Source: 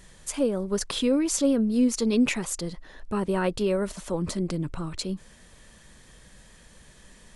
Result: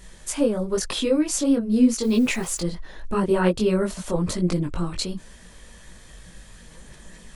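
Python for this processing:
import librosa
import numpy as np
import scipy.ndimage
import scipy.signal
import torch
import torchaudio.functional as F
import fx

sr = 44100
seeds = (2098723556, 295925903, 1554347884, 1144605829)

p1 = fx.rider(x, sr, range_db=3, speed_s=0.5)
p2 = x + (p1 * librosa.db_to_amplitude(0.0))
p3 = fx.quant_dither(p2, sr, seeds[0], bits=8, dither='triangular', at=(2.03, 2.6))
y = fx.chorus_voices(p3, sr, voices=6, hz=1.2, base_ms=20, depth_ms=3.2, mix_pct=45)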